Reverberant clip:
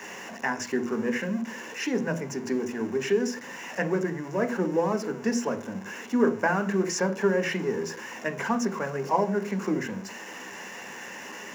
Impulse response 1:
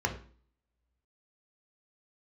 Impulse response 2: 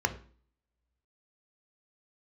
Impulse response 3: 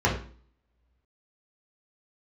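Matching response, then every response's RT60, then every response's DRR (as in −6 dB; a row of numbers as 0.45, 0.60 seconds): 2; 0.45, 0.45, 0.45 seconds; 2.5, 7.0, −4.0 decibels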